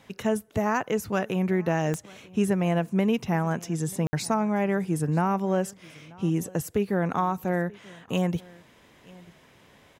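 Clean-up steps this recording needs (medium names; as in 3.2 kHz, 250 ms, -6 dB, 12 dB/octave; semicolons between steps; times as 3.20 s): de-click; room tone fill 4.07–4.13 s; inverse comb 936 ms -23.5 dB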